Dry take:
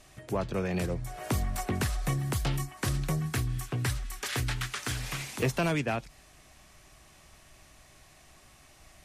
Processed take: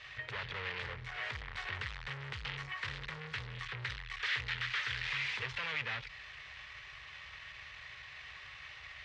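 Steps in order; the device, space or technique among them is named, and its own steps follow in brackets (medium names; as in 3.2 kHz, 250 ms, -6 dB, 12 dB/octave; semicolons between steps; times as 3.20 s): scooped metal amplifier (valve stage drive 44 dB, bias 0.45; cabinet simulation 96–3500 Hz, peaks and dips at 180 Hz -10 dB, 450 Hz +6 dB, 690 Hz -10 dB, 1.9 kHz +6 dB; amplifier tone stack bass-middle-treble 10-0-10); trim +16.5 dB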